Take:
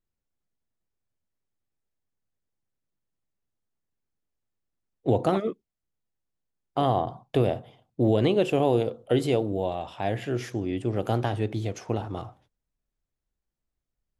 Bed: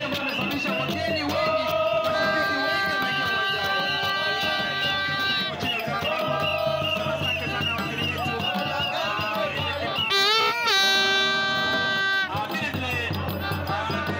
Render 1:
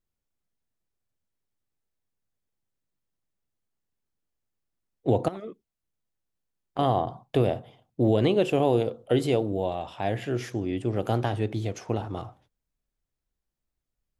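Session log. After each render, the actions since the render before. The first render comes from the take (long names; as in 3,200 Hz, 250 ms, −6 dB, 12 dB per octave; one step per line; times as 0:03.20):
0:05.28–0:06.79: downward compressor, threshold −34 dBFS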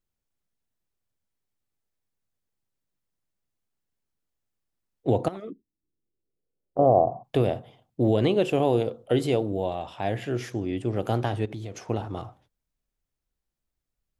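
0:05.49–0:07.23: low-pass with resonance 270 Hz → 690 Hz, resonance Q 3.9
0:11.45–0:11.88: downward compressor, threshold −32 dBFS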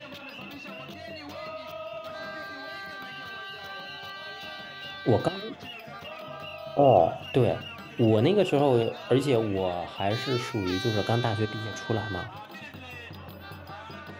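mix in bed −15 dB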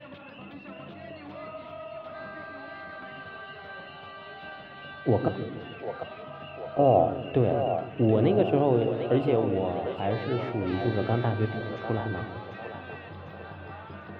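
high-frequency loss of the air 460 metres
echo with a time of its own for lows and highs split 450 Hz, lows 150 ms, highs 748 ms, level −7 dB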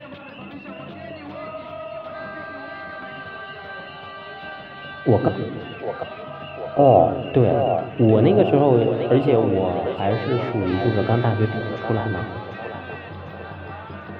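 level +7 dB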